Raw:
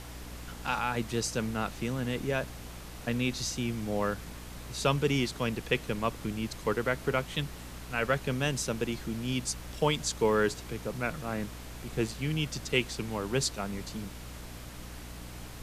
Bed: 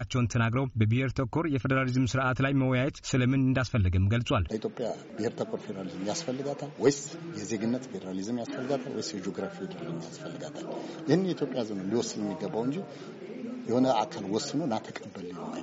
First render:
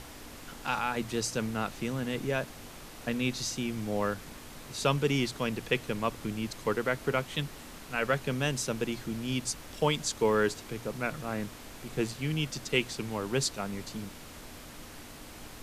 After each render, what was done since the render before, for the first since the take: hum notches 60/120/180 Hz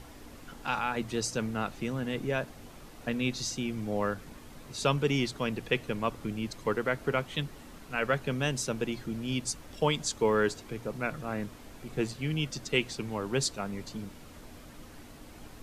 noise reduction 7 dB, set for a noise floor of -47 dBFS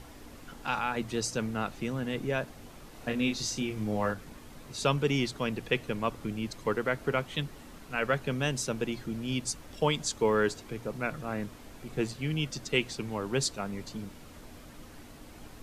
2.90–4.12 s: doubling 28 ms -5 dB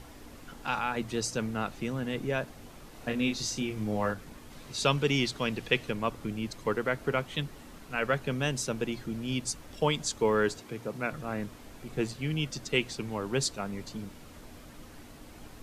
4.51–5.91 s: peaking EQ 3.8 kHz +4.5 dB 2 oct; 10.60–11.13 s: high-pass 100 Hz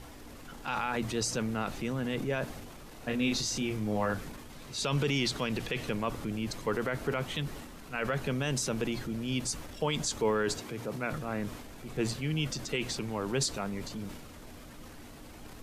transient shaper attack -2 dB, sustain +6 dB; peak limiter -19.5 dBFS, peak gain reduction 8.5 dB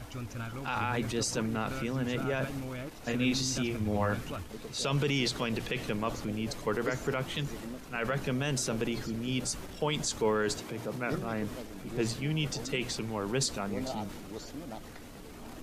add bed -13 dB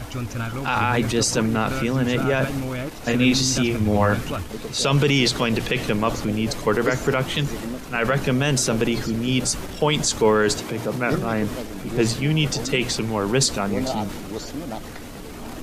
trim +11 dB

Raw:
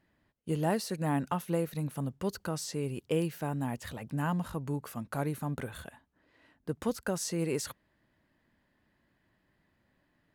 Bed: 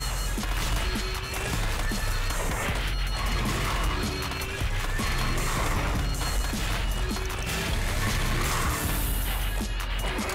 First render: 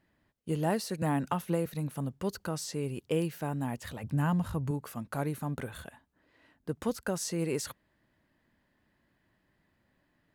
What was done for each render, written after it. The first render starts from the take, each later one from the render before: 1.02–1.66 s: three bands compressed up and down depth 70%; 4.03–4.71 s: peaking EQ 87 Hz +14 dB 1.1 oct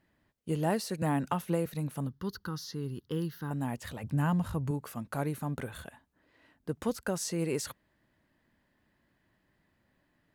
2.07–3.51 s: static phaser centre 2.4 kHz, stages 6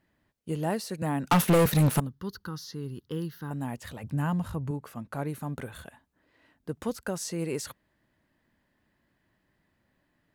1.30–2.00 s: waveshaping leveller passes 5; 4.55–5.29 s: treble shelf 4.1 kHz -6.5 dB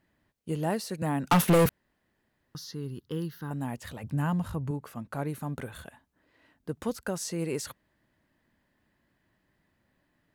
1.69–2.55 s: room tone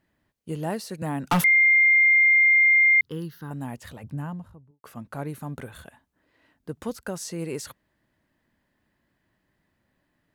1.44–3.01 s: bleep 2.11 kHz -14 dBFS; 3.80–4.84 s: studio fade out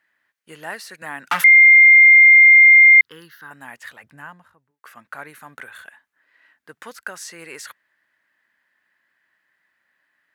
high-pass 1.2 kHz 6 dB/octave; peaking EQ 1.7 kHz +13 dB 1.2 oct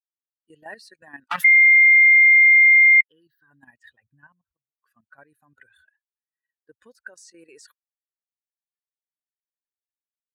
expander on every frequency bin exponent 2; level held to a coarse grid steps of 12 dB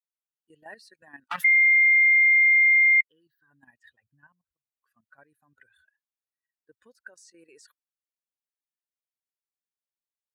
trim -5.5 dB

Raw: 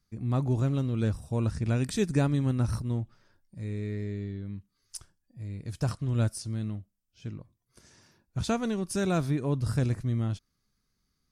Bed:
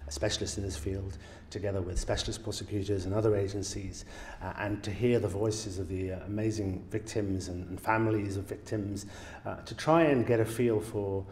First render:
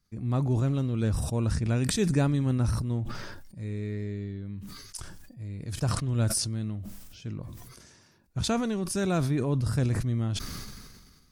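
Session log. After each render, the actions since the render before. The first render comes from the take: decay stretcher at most 35 dB/s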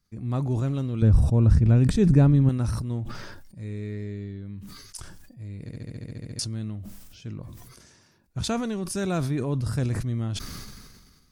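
1.02–2.49 s: tilt EQ -3 dB/octave; 5.62 s: stutter in place 0.07 s, 11 plays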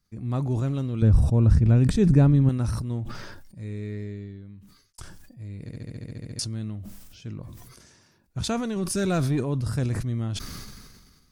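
3.99–4.98 s: fade out; 8.76–9.41 s: waveshaping leveller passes 1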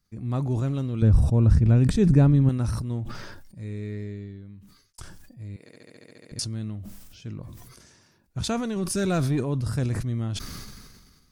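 5.56–6.32 s: high-pass 460 Hz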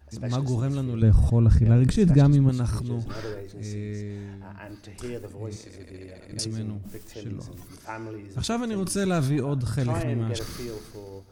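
add bed -8.5 dB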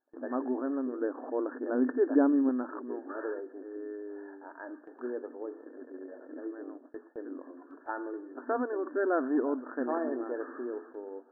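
FFT band-pass 240–1800 Hz; gate with hold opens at -42 dBFS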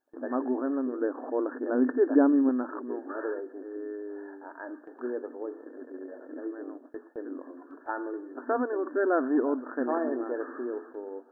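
trim +3 dB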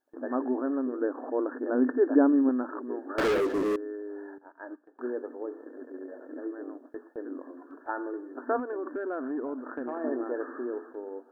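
3.18–3.76 s: waveshaping leveller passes 5; 4.38–4.99 s: upward expansion 2.5:1, over -48 dBFS; 8.59–10.04 s: compression 5:1, threshold -30 dBFS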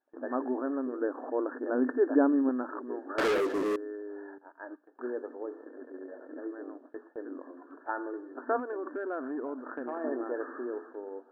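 level-controlled noise filter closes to 2.4 kHz, open at -25.5 dBFS; bass shelf 220 Hz -9 dB

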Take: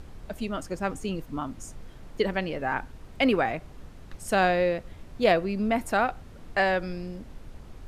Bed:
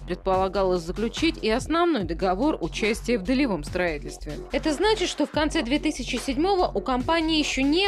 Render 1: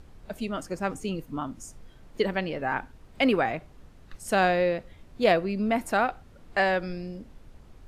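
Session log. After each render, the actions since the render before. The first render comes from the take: noise print and reduce 6 dB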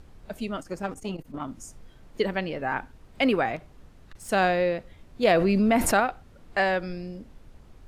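0.57–1.48 s: transformer saturation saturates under 560 Hz; 3.56–4.29 s: hard clipper -39 dBFS; 5.23–6.00 s: level flattener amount 70%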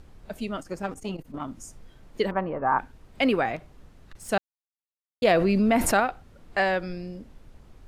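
2.31–2.79 s: resonant low-pass 1.1 kHz, resonance Q 3.8; 4.38–5.22 s: mute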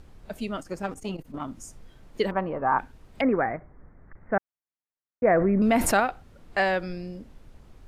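3.21–5.62 s: steep low-pass 2.1 kHz 72 dB/octave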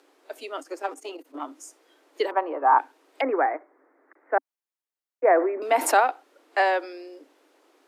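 steep high-pass 280 Hz 96 dB/octave; dynamic bell 880 Hz, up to +7 dB, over -39 dBFS, Q 2.2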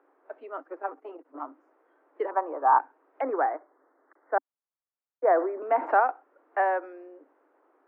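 low-pass 1.5 kHz 24 dB/octave; bass shelf 480 Hz -8 dB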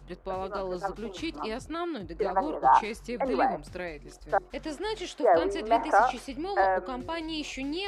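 add bed -11.5 dB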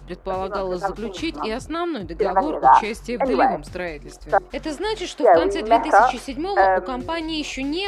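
trim +8 dB; peak limiter -3 dBFS, peak gain reduction 2 dB

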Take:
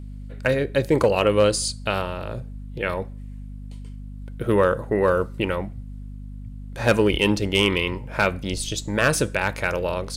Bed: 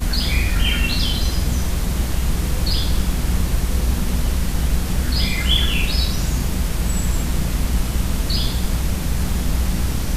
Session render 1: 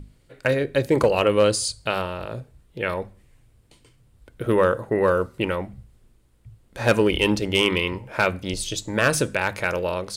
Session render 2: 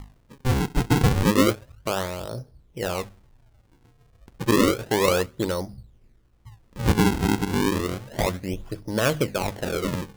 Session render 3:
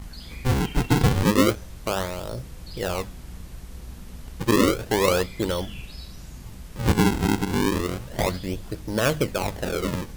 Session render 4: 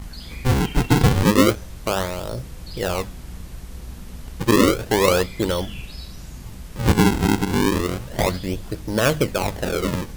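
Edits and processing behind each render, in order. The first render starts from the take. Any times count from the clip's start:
hum notches 50/100/150/200/250 Hz
Gaussian low-pass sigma 4.6 samples; decimation with a swept rate 42×, swing 160% 0.31 Hz
add bed -20 dB
trim +3.5 dB

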